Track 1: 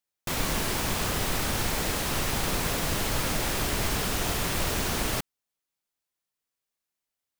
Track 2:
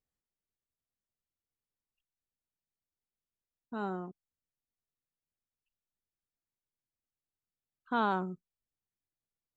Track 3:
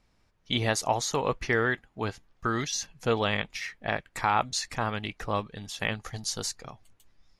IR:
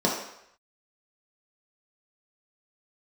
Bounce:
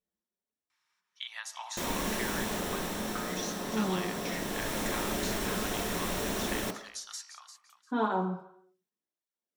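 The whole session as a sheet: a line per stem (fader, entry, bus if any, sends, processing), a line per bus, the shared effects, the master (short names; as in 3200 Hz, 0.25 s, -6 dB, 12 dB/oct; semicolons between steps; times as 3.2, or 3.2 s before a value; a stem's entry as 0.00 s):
-7.5 dB, 1.50 s, send -16.5 dB, no echo send, auto duck -9 dB, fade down 1.35 s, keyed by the second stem
-3.0 dB, 0.00 s, send -11.5 dB, no echo send, tape flanging out of phase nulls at 0.27 Hz, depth 7.9 ms
-4.5 dB, 0.70 s, send -19 dB, echo send -10.5 dB, steep high-pass 1000 Hz 36 dB/oct; compressor 6:1, threshold -34 dBFS, peak gain reduction 11 dB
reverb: on, RT60 0.75 s, pre-delay 3 ms
echo: feedback echo 0.348 s, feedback 18%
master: dry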